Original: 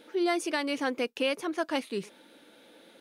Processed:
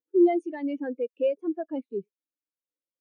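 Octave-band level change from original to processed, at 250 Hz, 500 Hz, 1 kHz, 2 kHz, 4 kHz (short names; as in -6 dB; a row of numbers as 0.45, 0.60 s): +5.5 dB, +4.5 dB, -2.5 dB, -12.0 dB, under -15 dB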